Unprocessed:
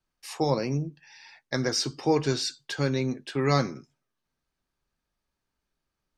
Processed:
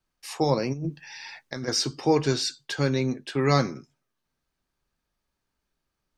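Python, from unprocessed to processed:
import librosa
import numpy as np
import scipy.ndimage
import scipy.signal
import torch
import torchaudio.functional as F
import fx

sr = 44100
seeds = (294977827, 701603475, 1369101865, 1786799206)

y = fx.over_compress(x, sr, threshold_db=-35.0, ratio=-1.0, at=(0.72, 1.67), fade=0.02)
y = y * 10.0 ** (2.0 / 20.0)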